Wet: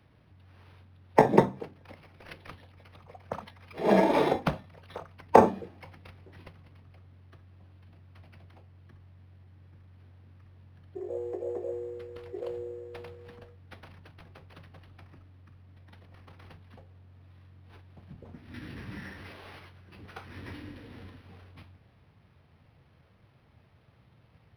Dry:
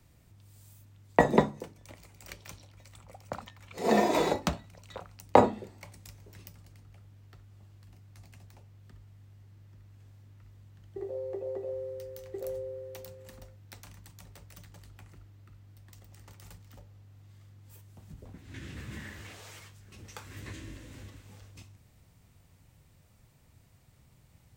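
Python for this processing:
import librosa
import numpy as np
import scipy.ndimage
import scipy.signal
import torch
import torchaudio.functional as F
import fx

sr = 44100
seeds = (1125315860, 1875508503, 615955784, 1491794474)

y = scipy.signal.sosfilt(scipy.signal.butter(2, 100.0, 'highpass', fs=sr, output='sos'), x)
y = fx.pitch_keep_formants(y, sr, semitones=-1.5)
y = np.interp(np.arange(len(y)), np.arange(len(y))[::6], y[::6])
y = y * 10.0 ** (3.0 / 20.0)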